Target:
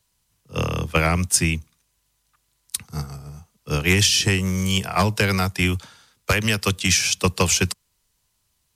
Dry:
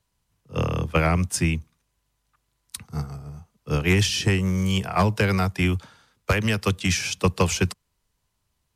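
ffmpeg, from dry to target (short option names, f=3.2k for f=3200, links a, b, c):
-af "highshelf=f=2.6k:g=10"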